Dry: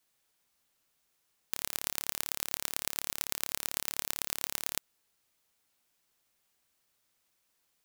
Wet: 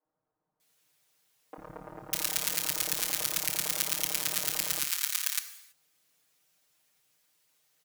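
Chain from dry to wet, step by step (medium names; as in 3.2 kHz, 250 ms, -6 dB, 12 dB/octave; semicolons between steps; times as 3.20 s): high-pass 69 Hz 6 dB/octave; harmony voices -4 st -6 dB, -3 st -6 dB; comb 6.5 ms, depth 98%; three bands offset in time mids, lows, highs 50/600 ms, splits 280/1100 Hz; gated-style reverb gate 350 ms falling, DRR 10 dB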